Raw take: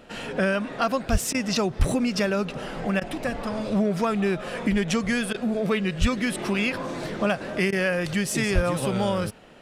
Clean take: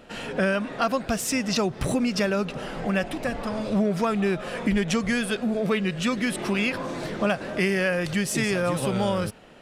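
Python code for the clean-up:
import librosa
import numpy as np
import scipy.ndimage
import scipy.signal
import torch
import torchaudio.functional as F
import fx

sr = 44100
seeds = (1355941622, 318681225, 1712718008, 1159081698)

y = fx.fix_deplosive(x, sr, at_s=(1.11, 1.78, 6.0, 8.54))
y = fx.fix_interpolate(y, sr, at_s=(1.33, 3.0, 5.33, 7.71), length_ms=13.0)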